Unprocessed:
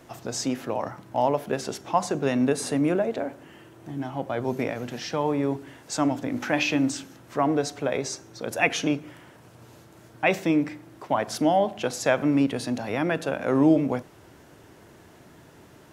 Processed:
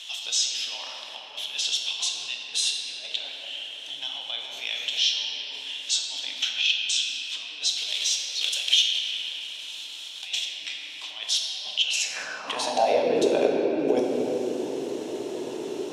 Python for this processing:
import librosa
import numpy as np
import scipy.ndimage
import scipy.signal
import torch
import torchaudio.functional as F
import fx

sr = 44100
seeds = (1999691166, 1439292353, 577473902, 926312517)

y = fx.block_float(x, sr, bits=3, at=(7.68, 10.26), fade=0.02)
y = fx.over_compress(y, sr, threshold_db=-29.0, ratio=-0.5)
y = scipy.signal.sosfilt(scipy.signal.butter(2, 7000.0, 'lowpass', fs=sr, output='sos'), y)
y = fx.low_shelf(y, sr, hz=140.0, db=9.5)
y = fx.notch(y, sr, hz=4700.0, q=9.6)
y = fx.room_shoebox(y, sr, seeds[0], volume_m3=170.0, walls='hard', distance_m=0.49)
y = fx.filter_sweep_highpass(y, sr, from_hz=3300.0, to_hz=390.0, start_s=11.82, end_s=13.21, q=5.5)
y = fx.band_shelf(y, sr, hz=1600.0, db=-8.5, octaves=1.1)
y = fx.band_squash(y, sr, depth_pct=40)
y = y * 10.0 ** (2.5 / 20.0)